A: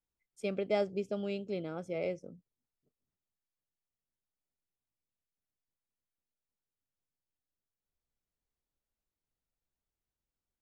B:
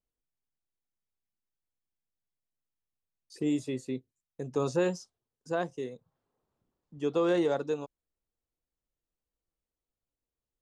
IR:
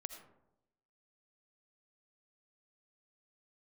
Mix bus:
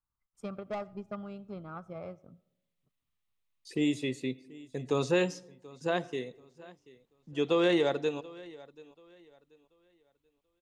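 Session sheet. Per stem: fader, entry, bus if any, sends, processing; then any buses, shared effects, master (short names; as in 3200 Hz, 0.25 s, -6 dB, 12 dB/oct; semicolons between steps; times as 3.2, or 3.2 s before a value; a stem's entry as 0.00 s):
+1.0 dB, 0.00 s, send -10.5 dB, no echo send, EQ curve 120 Hz 0 dB, 470 Hz -15 dB, 1200 Hz +7 dB, 2000 Hz -16 dB; transient shaper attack +7 dB, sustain -5 dB; soft clip -33 dBFS, distortion -11 dB
-1.5 dB, 0.35 s, send -7.5 dB, echo send -19 dB, band shelf 2700 Hz +8 dB 1.3 oct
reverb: on, RT60 0.85 s, pre-delay 40 ms
echo: feedback echo 0.734 s, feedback 29%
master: dry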